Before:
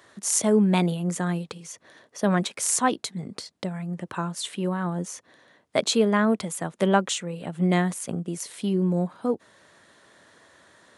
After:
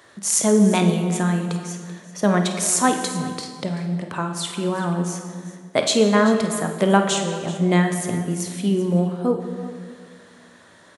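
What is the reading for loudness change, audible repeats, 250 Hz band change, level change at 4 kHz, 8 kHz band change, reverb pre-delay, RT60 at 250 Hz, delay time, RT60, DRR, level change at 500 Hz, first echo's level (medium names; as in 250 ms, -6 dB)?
+4.5 dB, 2, +5.0 dB, +4.5 dB, +4.5 dB, 16 ms, 2.3 s, 50 ms, 1.9 s, 4.5 dB, +5.0 dB, -12.0 dB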